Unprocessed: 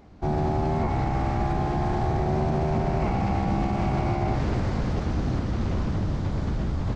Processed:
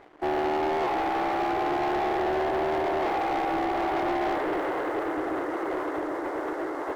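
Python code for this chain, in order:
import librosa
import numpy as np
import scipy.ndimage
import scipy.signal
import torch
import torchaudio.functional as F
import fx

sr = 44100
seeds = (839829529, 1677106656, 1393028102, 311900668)

y = fx.brickwall_bandpass(x, sr, low_hz=290.0, high_hz=2200.0)
y = fx.leveller(y, sr, passes=3)
y = y * librosa.db_to_amplitude(-3.0)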